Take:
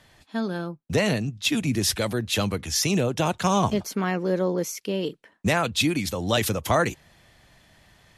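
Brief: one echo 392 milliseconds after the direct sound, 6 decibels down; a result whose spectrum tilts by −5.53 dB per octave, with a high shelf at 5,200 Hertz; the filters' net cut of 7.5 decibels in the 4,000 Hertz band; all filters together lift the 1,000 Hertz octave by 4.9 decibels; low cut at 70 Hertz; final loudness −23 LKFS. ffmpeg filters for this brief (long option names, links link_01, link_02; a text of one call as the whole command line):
ffmpeg -i in.wav -af "highpass=70,equalizer=frequency=1000:width_type=o:gain=7,equalizer=frequency=4000:width_type=o:gain=-7.5,highshelf=frequency=5200:gain=-6,aecho=1:1:392:0.501,volume=0.5dB" out.wav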